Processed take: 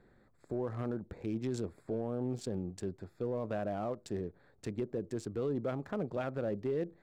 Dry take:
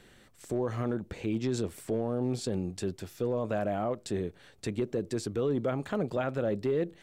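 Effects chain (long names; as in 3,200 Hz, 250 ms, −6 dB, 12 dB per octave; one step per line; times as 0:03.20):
adaptive Wiener filter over 15 samples
level −5 dB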